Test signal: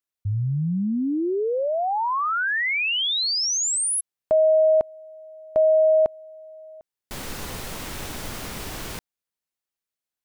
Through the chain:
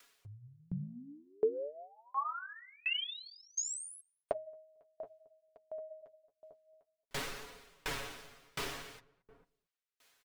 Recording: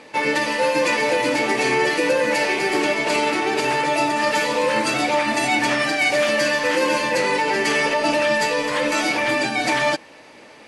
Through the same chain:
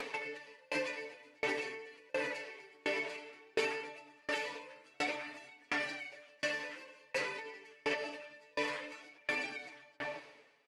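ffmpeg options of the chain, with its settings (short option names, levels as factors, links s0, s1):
-filter_complex "[0:a]alimiter=limit=0.141:level=0:latency=1:release=215,acompressor=mode=upward:threshold=0.0112:ratio=2.5:attack=6.3:release=653:knee=2.83:detection=peak,tiltshelf=f=750:g=-7,asplit=2[s0][s1];[s1]adelay=224,lowpass=f=940:p=1,volume=0.398,asplit=2[s2][s3];[s3]adelay=224,lowpass=f=940:p=1,volume=0.23,asplit=2[s4][s5];[s5]adelay=224,lowpass=f=940:p=1,volume=0.23[s6];[s2][s4][s6]amix=inputs=3:normalize=0[s7];[s0][s7]amix=inputs=2:normalize=0,flanger=delay=4.1:depth=9.4:regen=-31:speed=0.53:shape=sinusoidal,lowpass=f=2500:p=1,acompressor=threshold=0.00708:ratio=4:attack=99:release=50:knee=6:detection=peak,equalizer=f=440:w=6.9:g=8,bandreject=f=840:w=27,aecho=1:1:7.2:0.61,bandreject=f=112.5:t=h:w=4,bandreject=f=225:t=h:w=4,bandreject=f=337.5:t=h:w=4,aeval=exprs='val(0)*pow(10,-35*if(lt(mod(1.4*n/s,1),2*abs(1.4)/1000),1-mod(1.4*n/s,1)/(2*abs(1.4)/1000),(mod(1.4*n/s,1)-2*abs(1.4)/1000)/(1-2*abs(1.4)/1000))/20)':c=same,volume=1.5"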